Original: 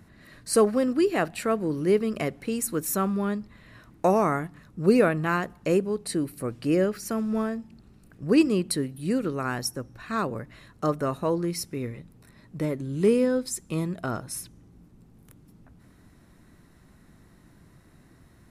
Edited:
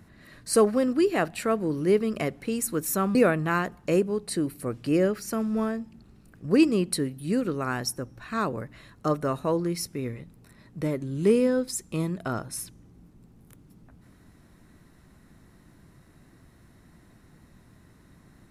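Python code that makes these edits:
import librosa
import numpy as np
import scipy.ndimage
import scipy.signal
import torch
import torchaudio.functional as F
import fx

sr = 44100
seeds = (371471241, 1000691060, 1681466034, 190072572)

y = fx.edit(x, sr, fx.cut(start_s=3.15, length_s=1.78), tone=tone)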